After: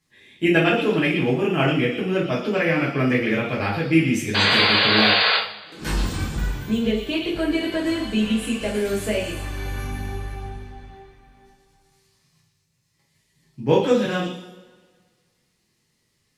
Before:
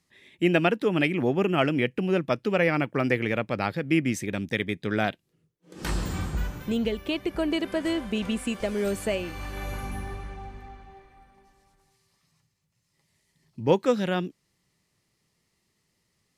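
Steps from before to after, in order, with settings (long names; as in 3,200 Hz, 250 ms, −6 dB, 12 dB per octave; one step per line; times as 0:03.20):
in parallel at +0.5 dB: output level in coarse steps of 10 dB
on the sum: echo through a band-pass that steps 117 ms, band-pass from 3,700 Hz, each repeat 0.7 octaves, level −3 dB
sound drawn into the spectrogram noise, 0:04.34–0:05.37, 410–4,900 Hz −18 dBFS
coupled-rooms reverb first 0.43 s, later 1.7 s, from −19 dB, DRR −6 dB
level −7 dB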